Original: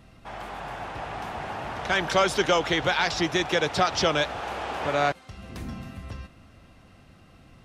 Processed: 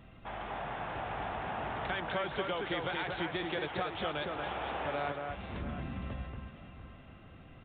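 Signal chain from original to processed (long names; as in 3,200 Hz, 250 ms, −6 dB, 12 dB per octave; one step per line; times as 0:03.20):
downward compressor 3 to 1, threshold −34 dBFS, peak gain reduction 12.5 dB
on a send: delay that swaps between a low-pass and a high-pass 231 ms, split 2,200 Hz, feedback 62%, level −3.5 dB
on the sum: downsampling to 8,000 Hz
level −2.5 dB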